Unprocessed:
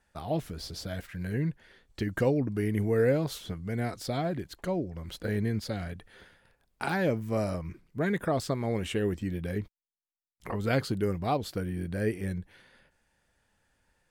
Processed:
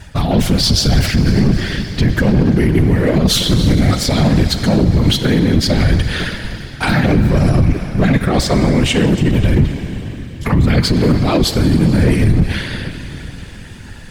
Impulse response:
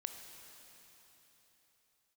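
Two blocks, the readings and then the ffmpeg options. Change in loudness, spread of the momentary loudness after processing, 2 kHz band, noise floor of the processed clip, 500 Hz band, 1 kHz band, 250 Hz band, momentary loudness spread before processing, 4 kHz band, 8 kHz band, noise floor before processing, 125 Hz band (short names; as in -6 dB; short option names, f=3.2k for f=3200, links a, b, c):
+17.5 dB, 12 LU, +16.0 dB, -32 dBFS, +11.0 dB, +12.5 dB, +18.5 dB, 11 LU, +24.5 dB, +22.0 dB, -77 dBFS, +20.0 dB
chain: -filter_complex "[0:a]areverse,acompressor=threshold=-40dB:ratio=16,areverse,flanger=delay=3.2:depth=8.7:regen=-20:speed=0.35:shape=sinusoidal,bass=f=250:g=14,treble=f=4k:g=0,aeval=exprs='clip(val(0),-1,0.00891)':c=same,asplit=2[a][b];[b]equalizer=f=3.7k:w=0.39:g=13.5[c];[1:a]atrim=start_sample=2205[d];[c][d]afir=irnorm=-1:irlink=0,volume=0.5dB[e];[a][e]amix=inputs=2:normalize=0,afftfilt=real='hypot(re,im)*cos(2*PI*random(0))':imag='hypot(re,im)*sin(2*PI*random(1))':win_size=512:overlap=0.75,alimiter=level_in=34.5dB:limit=-1dB:release=50:level=0:latency=1,volume=-3dB"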